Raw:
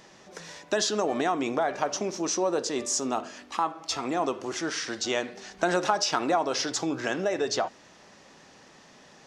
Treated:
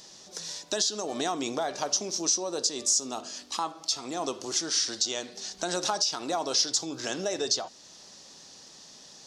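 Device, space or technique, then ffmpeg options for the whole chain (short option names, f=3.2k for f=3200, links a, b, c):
over-bright horn tweeter: -af "highshelf=f=3.1k:t=q:w=1.5:g=11.5,alimiter=limit=-10.5dB:level=0:latency=1:release=405,volume=-3.5dB"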